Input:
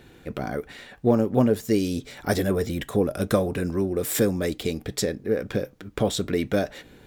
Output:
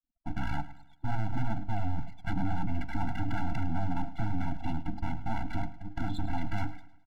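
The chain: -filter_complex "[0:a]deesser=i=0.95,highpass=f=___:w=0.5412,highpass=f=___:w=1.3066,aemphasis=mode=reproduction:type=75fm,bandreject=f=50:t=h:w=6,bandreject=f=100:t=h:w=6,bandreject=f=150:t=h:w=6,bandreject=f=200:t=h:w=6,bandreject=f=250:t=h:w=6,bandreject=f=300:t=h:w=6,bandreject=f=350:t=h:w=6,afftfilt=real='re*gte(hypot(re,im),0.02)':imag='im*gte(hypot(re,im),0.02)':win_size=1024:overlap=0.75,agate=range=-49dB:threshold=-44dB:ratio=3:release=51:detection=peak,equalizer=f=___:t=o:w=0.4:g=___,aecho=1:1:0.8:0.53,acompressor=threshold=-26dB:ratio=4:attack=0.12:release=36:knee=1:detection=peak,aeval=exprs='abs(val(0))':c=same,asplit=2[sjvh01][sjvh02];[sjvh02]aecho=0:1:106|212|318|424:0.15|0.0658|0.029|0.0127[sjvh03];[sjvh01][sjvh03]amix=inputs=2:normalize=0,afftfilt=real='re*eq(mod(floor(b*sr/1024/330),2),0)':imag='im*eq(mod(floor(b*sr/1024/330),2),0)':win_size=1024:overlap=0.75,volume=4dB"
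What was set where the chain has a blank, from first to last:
61, 61, 5000, 9.5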